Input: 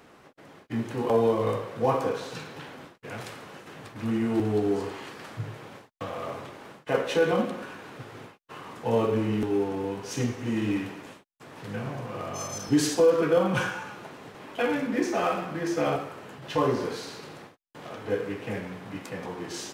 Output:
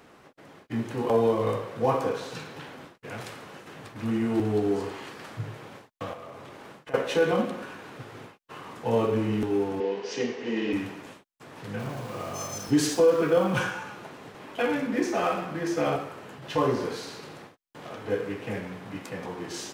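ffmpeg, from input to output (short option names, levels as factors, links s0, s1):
-filter_complex "[0:a]asettb=1/sr,asplit=3[s0][s1][s2];[s0]atrim=end=6.134[s3];[s1]atrim=start=6.13:end=6.94,asetpts=PTS-STARTPTS,afade=t=in:d=0.004:c=qsin,afade=t=out:st=0.806:d=0.004:c=qsin,acompressor=threshold=0.01:ratio=4:attack=3.2:release=140:knee=1:detection=peak[s4];[s2]atrim=start=6.936[s5];[s3][s4]acrossfade=d=0.004:c1=hsin:c2=qsin[s6];[s6][s5]acrossfade=d=0.004:c1=qsin:c2=hsin,asettb=1/sr,asplit=3[s7][s8][s9];[s7]atrim=end=9.804[s10];[s8]atrim=start=9.8:end=10.73,asetpts=PTS-STARTPTS,afade=t=in:d=0.004:c=qsin,afade=t=out:st=0.926:d=0.004:c=qsin,highpass=f=200:w=0.5412,highpass=f=200:w=1.3066,equalizer=f=280:t=q:w=4:g=-6,equalizer=f=440:t=q:w=4:g=10,equalizer=f=1300:t=q:w=4:g=-5,equalizer=f=1900:t=q:w=4:g=4,equalizer=f=2900:t=q:w=4:g=4,equalizer=f=4800:t=q:w=4:g=3,lowpass=f=5700:w=0.5412,lowpass=f=5700:w=1.3066[s11];[s9]atrim=start=10.726[s12];[s10][s11]acrossfade=d=0.004:c1=hsin:c2=qsin[s13];[s13][s12]acrossfade=d=0.004:c1=qsin:c2=hsin,asettb=1/sr,asplit=3[s14][s15][s16];[s14]atrim=end=11.794[s17];[s15]atrim=start=11.79:end=13.59,asetpts=PTS-STARTPTS,afade=t=in:d=0.004:c=qsin,afade=t=out:st=1.796:d=0.004:c=qsin,aeval=exprs='val(0)*gte(abs(val(0)),0.00841)':c=same[s18];[s16]atrim=start=13.586[s19];[s17][s18]acrossfade=d=0.004:c1=hsin:c2=qsin[s20];[s20][s19]acrossfade=d=0.004:c1=qsin:c2=hsin"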